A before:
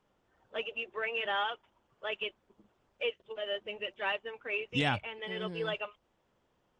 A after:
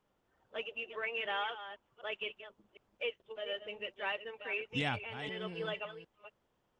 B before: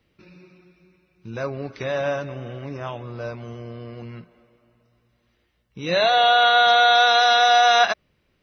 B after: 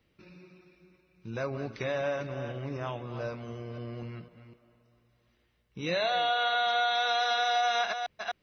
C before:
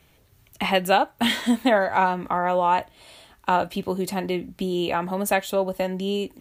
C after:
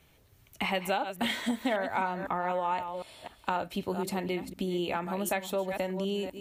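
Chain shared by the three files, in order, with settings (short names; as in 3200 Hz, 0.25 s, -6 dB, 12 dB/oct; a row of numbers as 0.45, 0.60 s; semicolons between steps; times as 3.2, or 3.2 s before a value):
reverse delay 0.252 s, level -11 dB; dynamic EQ 2200 Hz, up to +4 dB, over -45 dBFS, Q 5.7; compressor 2.5:1, threshold -25 dBFS; gain -4 dB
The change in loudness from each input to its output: -3.5, -13.0, -8.5 LU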